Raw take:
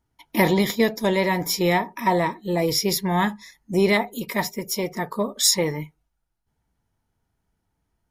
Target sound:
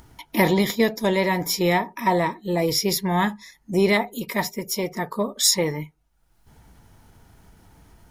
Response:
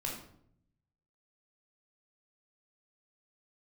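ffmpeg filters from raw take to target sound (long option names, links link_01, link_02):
-af "acompressor=mode=upward:threshold=-32dB:ratio=2.5"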